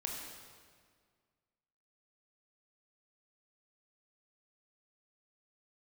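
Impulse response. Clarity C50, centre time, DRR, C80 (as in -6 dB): 1.5 dB, 80 ms, -1.0 dB, 3.0 dB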